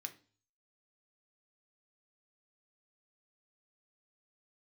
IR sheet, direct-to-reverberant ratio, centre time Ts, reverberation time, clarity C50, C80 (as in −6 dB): 5.5 dB, 6 ms, 0.40 s, 15.5 dB, 21.0 dB